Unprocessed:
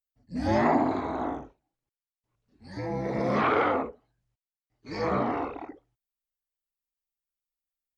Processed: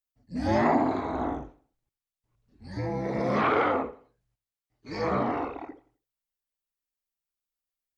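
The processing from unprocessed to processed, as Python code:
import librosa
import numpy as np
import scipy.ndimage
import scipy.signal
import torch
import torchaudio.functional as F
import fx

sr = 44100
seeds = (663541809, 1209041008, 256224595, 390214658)

y = fx.low_shelf(x, sr, hz=130.0, db=9.0, at=(1.13, 2.9))
y = fx.echo_feedback(y, sr, ms=86, feedback_pct=35, wet_db=-19)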